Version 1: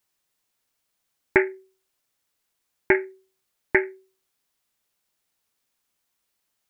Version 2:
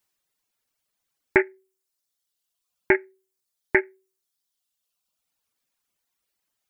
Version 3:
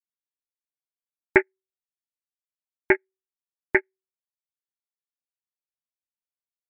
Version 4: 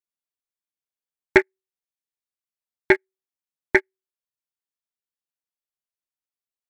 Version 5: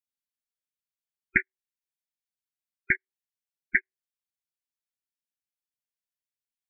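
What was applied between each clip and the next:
reverb removal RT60 1.3 s
upward expander 2.5:1, over -34 dBFS; gain +2.5 dB
sample leveller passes 1
inverse Chebyshev band-stop 420–990 Hz, stop band 40 dB; spectral gate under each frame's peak -15 dB strong; gain -3.5 dB

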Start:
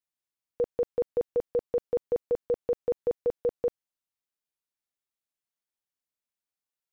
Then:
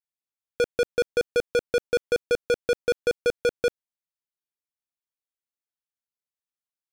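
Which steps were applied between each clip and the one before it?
sample leveller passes 5; gain +2 dB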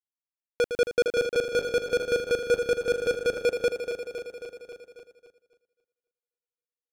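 regenerating reverse delay 0.135 s, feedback 80%, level -8 dB; expander -44 dBFS; gain -1.5 dB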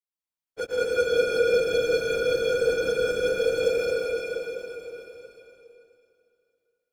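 phase scrambler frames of 50 ms; plate-style reverb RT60 2.7 s, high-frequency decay 0.9×, pre-delay 0.1 s, DRR -6 dB; gain -5 dB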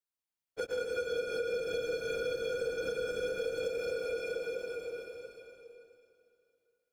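compressor 5:1, threshold -31 dBFS, peak gain reduction 13 dB; gain -1.5 dB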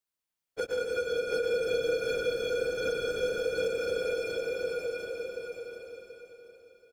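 feedback echo 0.73 s, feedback 27%, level -5 dB; gain +3.5 dB

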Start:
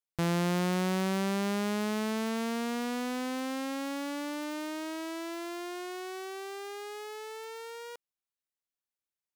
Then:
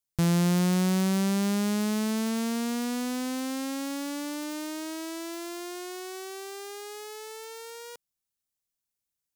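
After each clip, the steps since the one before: tone controls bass +10 dB, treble +9 dB; gain -1 dB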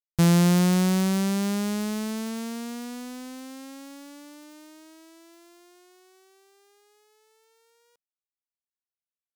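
upward expander 2.5:1, over -41 dBFS; gain +6 dB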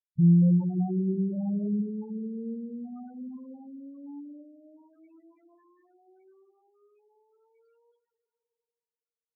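two-slope reverb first 0.28 s, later 2.8 s, from -16 dB, DRR 0 dB; loudest bins only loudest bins 4; gain -4.5 dB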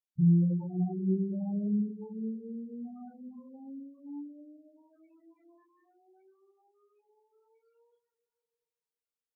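chorus voices 2, 0.44 Hz, delay 25 ms, depth 4.9 ms

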